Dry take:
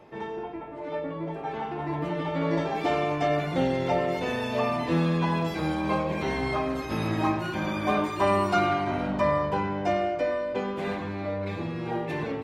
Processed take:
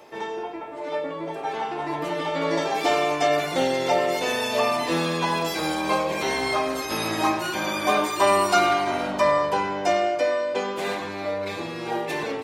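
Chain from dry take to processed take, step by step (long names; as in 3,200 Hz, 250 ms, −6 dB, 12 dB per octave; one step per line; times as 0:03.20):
bass and treble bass −14 dB, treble +12 dB
level +5 dB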